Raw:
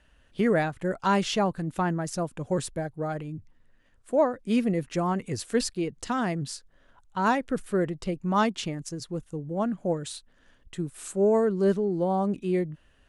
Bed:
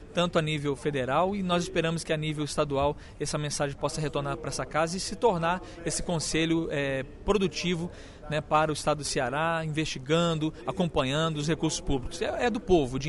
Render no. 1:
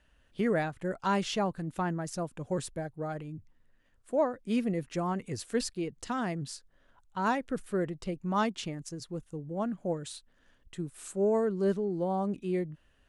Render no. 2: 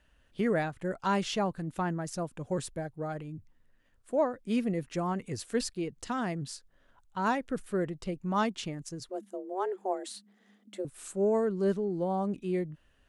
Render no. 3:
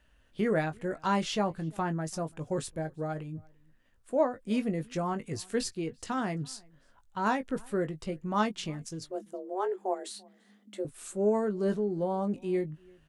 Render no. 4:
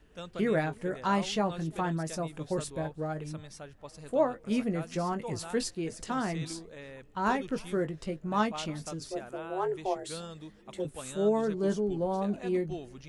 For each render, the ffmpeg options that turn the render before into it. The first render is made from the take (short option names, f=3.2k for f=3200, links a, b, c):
-af "volume=-5dB"
-filter_complex "[0:a]asettb=1/sr,asplit=3[a][b][c];[a]atrim=end=9.094[d];[b]atrim=start=9.09:end=10.85,asetpts=PTS-STARTPTS,afade=t=in:d=0.004:c=qsin,afade=t=out:st=1.756:d=0.004:c=qsin,afreqshift=190[e];[c]atrim=start=10.846[f];[d][e]acrossfade=d=0.004:c1=hsin:c2=qsin[g];[g][f]acrossfade=d=0.004:c1=qsin:c2=hsin"
-filter_complex "[0:a]asplit=2[a][b];[b]adelay=19,volume=-9dB[c];[a][c]amix=inputs=2:normalize=0,asplit=2[d][e];[e]adelay=338.2,volume=-27dB,highshelf=f=4k:g=-7.61[f];[d][f]amix=inputs=2:normalize=0"
-filter_complex "[1:a]volume=-17dB[a];[0:a][a]amix=inputs=2:normalize=0"